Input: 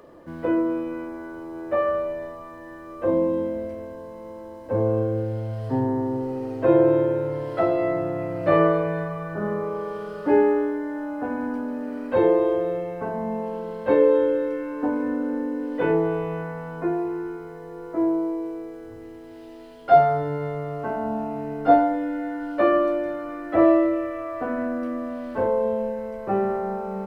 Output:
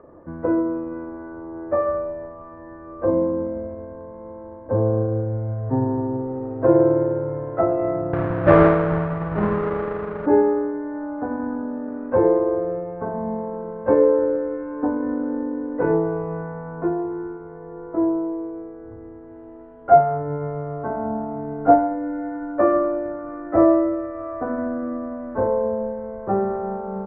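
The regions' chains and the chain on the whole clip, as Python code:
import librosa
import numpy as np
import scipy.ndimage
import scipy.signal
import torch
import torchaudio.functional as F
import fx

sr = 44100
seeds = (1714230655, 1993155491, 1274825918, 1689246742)

y = fx.chain(x, sr, fx.halfwave_hold(),
    fx.high_shelf(hz=3000.0, db=9.0), at=(8.13, 10.26))
y = scipy.signal.sosfilt(scipy.signal.butter(4, 1500.0, 'lowpass', fs=sr, output='sos'), y)
y = fx.peak_eq(y, sr, hz=73.0, db=6.0, octaves=1.3)
y = fx.transient(y, sr, attack_db=2, sustain_db=-5)
y = F.gain(torch.from_numpy(y), 1.0).numpy()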